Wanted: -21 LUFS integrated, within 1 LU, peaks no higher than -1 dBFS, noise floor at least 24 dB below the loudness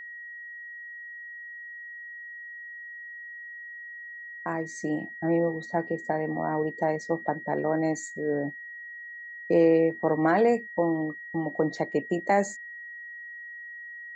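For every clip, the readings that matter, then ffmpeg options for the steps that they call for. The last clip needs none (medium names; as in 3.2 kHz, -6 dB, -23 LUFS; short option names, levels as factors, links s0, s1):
steady tone 1.9 kHz; tone level -39 dBFS; loudness -27.5 LUFS; peak level -10.5 dBFS; loudness target -21.0 LUFS
-> -af "bandreject=f=1900:w=30"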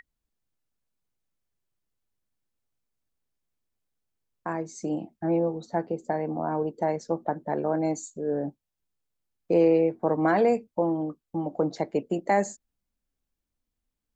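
steady tone not found; loudness -27.5 LUFS; peak level -10.5 dBFS; loudness target -21.0 LUFS
-> -af "volume=2.11"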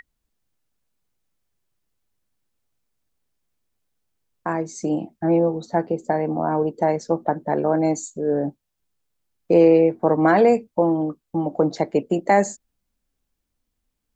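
loudness -21.0 LUFS; peak level -4.0 dBFS; noise floor -78 dBFS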